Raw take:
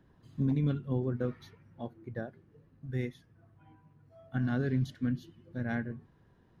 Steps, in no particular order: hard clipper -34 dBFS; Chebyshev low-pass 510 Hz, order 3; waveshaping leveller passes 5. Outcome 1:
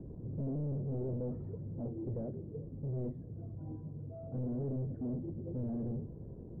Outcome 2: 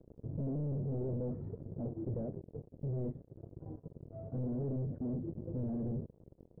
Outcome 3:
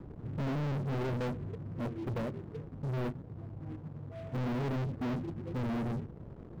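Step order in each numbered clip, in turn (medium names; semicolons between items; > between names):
hard clipper > waveshaping leveller > Chebyshev low-pass; waveshaping leveller > hard clipper > Chebyshev low-pass; hard clipper > Chebyshev low-pass > waveshaping leveller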